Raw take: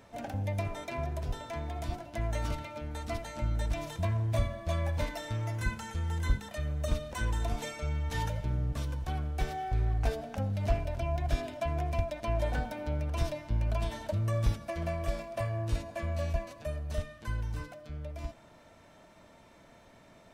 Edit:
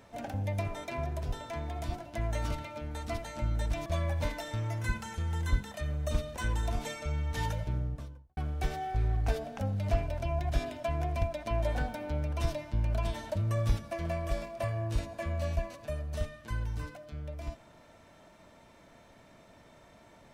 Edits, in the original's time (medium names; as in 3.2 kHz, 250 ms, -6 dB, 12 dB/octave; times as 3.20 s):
3.86–4.63 s: delete
8.38–9.14 s: studio fade out